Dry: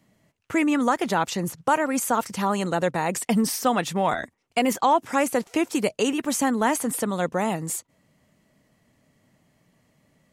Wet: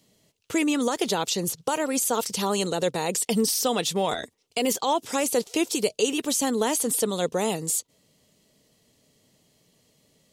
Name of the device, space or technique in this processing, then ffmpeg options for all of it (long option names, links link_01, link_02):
over-bright horn tweeter: -af "highshelf=frequency=2600:width_type=q:width=1.5:gain=10.5,alimiter=limit=-12dB:level=0:latency=1:release=50,equalizer=frequency=440:width_type=o:width=0.52:gain=9.5,volume=-3.5dB"